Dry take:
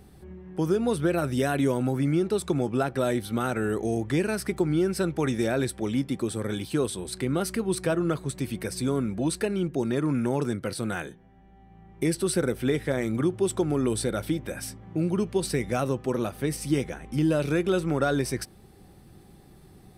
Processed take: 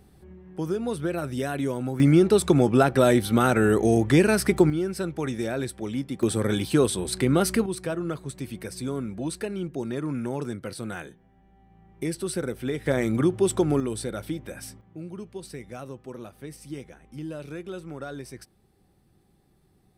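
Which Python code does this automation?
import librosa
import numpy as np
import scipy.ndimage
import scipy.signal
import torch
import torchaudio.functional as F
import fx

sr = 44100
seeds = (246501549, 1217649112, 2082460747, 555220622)

y = fx.gain(x, sr, db=fx.steps((0.0, -3.5), (2.0, 7.0), (4.7, -3.0), (6.23, 5.5), (7.66, -4.0), (12.86, 3.0), (13.8, -4.0), (14.81, -12.0)))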